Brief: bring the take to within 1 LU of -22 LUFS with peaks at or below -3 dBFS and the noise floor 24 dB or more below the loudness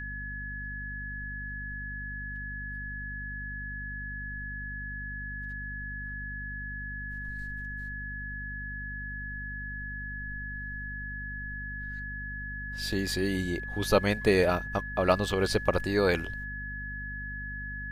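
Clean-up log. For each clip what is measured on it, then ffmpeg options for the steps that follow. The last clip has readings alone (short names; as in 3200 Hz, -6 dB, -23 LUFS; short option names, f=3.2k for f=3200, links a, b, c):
hum 50 Hz; harmonics up to 250 Hz; hum level -38 dBFS; steady tone 1700 Hz; tone level -37 dBFS; loudness -33.0 LUFS; peak -8.0 dBFS; loudness target -22.0 LUFS
-> -af "bandreject=f=50:t=h:w=4,bandreject=f=100:t=h:w=4,bandreject=f=150:t=h:w=4,bandreject=f=200:t=h:w=4,bandreject=f=250:t=h:w=4"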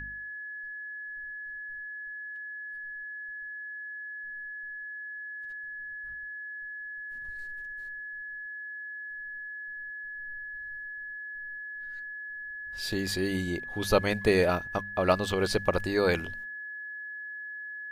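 hum none; steady tone 1700 Hz; tone level -37 dBFS
-> -af "bandreject=f=1.7k:w=30"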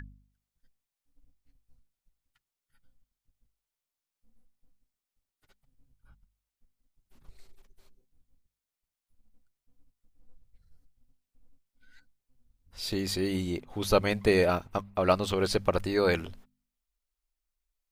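steady tone none; loudness -28.0 LUFS; peak -8.0 dBFS; loudness target -22.0 LUFS
-> -af "volume=6dB,alimiter=limit=-3dB:level=0:latency=1"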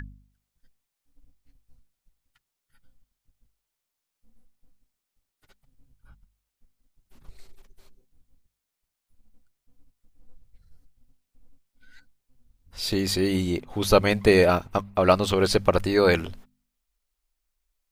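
loudness -22.5 LUFS; peak -3.0 dBFS; noise floor -84 dBFS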